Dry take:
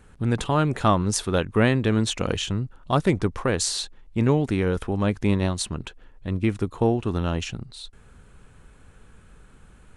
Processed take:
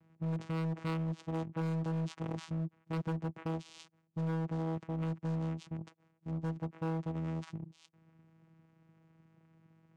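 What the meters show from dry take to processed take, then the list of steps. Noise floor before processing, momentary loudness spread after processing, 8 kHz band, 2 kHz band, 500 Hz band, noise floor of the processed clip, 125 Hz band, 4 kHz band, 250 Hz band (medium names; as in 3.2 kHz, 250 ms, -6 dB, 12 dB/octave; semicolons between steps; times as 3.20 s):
-52 dBFS, 10 LU, under -25 dB, -19.0 dB, -17.0 dB, -74 dBFS, -11.0 dB, -24.0 dB, -12.5 dB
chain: steep low-pass 4.1 kHz; vocoder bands 4, saw 162 Hz; overload inside the chain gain 23.5 dB; trim -8.5 dB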